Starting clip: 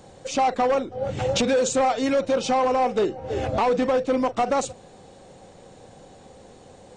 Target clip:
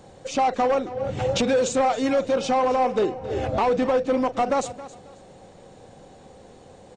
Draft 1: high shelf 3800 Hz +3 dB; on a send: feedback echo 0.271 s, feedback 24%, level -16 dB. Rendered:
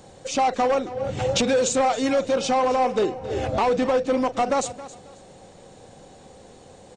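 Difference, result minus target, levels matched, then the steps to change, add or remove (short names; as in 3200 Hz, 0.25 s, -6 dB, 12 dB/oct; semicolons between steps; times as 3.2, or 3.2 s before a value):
8000 Hz band +4.5 dB
change: high shelf 3800 Hz -3.5 dB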